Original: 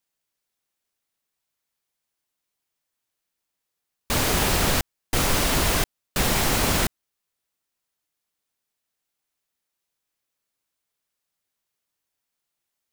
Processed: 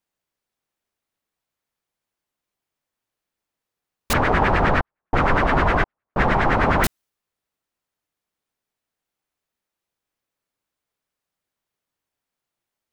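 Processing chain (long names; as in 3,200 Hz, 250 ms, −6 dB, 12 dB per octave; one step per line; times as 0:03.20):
0:04.13–0:06.84: auto-filter low-pass sine 9.7 Hz 830–1,900 Hz
one half of a high-frequency compander decoder only
level +3.5 dB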